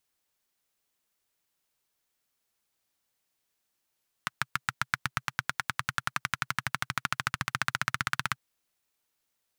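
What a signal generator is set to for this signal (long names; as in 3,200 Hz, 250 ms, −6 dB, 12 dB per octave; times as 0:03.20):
pulse-train model of a single-cylinder engine, changing speed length 4.09 s, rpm 800, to 2,000, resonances 130/1,400 Hz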